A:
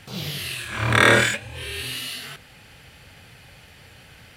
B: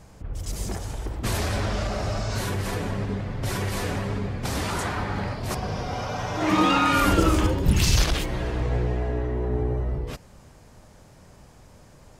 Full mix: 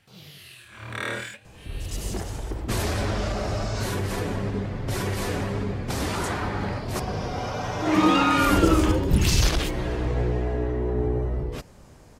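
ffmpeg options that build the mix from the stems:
ffmpeg -i stem1.wav -i stem2.wav -filter_complex "[0:a]volume=-15.5dB[link_01];[1:a]equalizer=frequency=350:width=1.5:gain=3.5,adelay=1450,volume=-0.5dB[link_02];[link_01][link_02]amix=inputs=2:normalize=0" out.wav

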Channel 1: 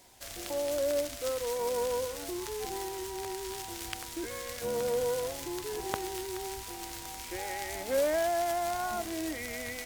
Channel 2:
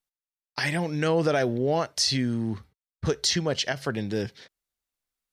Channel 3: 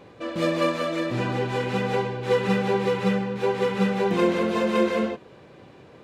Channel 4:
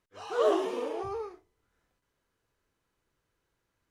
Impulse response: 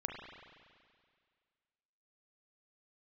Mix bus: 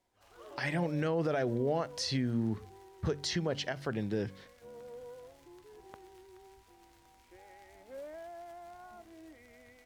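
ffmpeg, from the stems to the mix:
-filter_complex "[0:a]volume=-17dB[link_01];[1:a]bandreject=frequency=47.91:width_type=h:width=4,bandreject=frequency=95.82:width_type=h:width=4,bandreject=frequency=143.73:width_type=h:width=4,bandreject=frequency=191.64:width_type=h:width=4,bandreject=frequency=239.55:width_type=h:width=4,bandreject=frequency=287.46:width_type=h:width=4,volume=-3.5dB[link_02];[3:a]equalizer=frequency=520:width_type=o:width=2:gain=-13,volume=-16.5dB[link_03];[link_01][link_02][link_03]amix=inputs=3:normalize=0,highshelf=frequency=3300:gain=-12,alimiter=limit=-22.5dB:level=0:latency=1:release=104"

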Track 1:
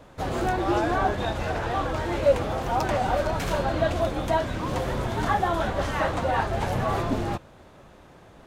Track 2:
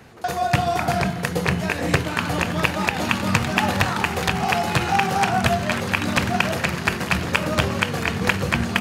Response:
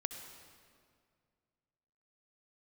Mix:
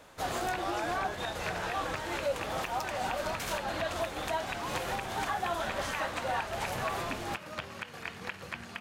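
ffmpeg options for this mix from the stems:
-filter_complex "[0:a]highshelf=frequency=5500:gain=7.5,volume=-1.5dB[link_01];[1:a]acrossover=split=4200[link_02][link_03];[link_03]acompressor=threshold=-39dB:ratio=4:attack=1:release=60[link_04];[link_02][link_04]amix=inputs=2:normalize=0,volume=-12dB[link_05];[link_01][link_05]amix=inputs=2:normalize=0,lowshelf=frequency=460:gain=-11.5,alimiter=limit=-22.5dB:level=0:latency=1:release=276"

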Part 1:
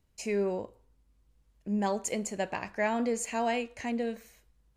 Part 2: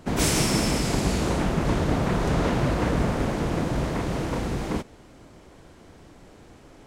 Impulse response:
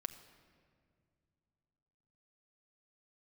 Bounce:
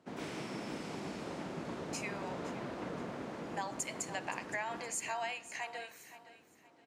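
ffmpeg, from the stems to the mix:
-filter_complex "[0:a]highpass=frequency=780:width=0.5412,highpass=frequency=780:width=1.3066,adelay=1750,volume=-2dB,asplit=3[link_01][link_02][link_03];[link_02]volume=-8dB[link_04];[link_03]volume=-14dB[link_05];[1:a]highpass=200,acrossover=split=3800[link_06][link_07];[link_07]acompressor=threshold=-36dB:ratio=4:attack=1:release=60[link_08];[link_06][link_08]amix=inputs=2:normalize=0,highshelf=frequency=8200:gain=-11.5,volume=-16dB,asplit=2[link_09][link_10];[link_10]volume=-6.5dB[link_11];[2:a]atrim=start_sample=2205[link_12];[link_04][link_12]afir=irnorm=-1:irlink=0[link_13];[link_05][link_11]amix=inputs=2:normalize=0,aecho=0:1:517|1034|1551|2068:1|0.31|0.0961|0.0298[link_14];[link_01][link_09][link_13][link_14]amix=inputs=4:normalize=0,acompressor=threshold=-34dB:ratio=6"

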